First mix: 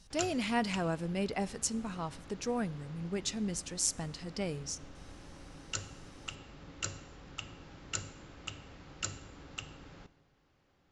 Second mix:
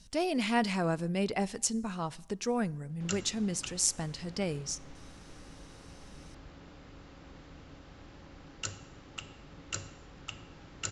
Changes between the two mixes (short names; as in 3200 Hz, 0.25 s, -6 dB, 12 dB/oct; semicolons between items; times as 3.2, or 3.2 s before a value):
speech +3.0 dB; background: entry +2.90 s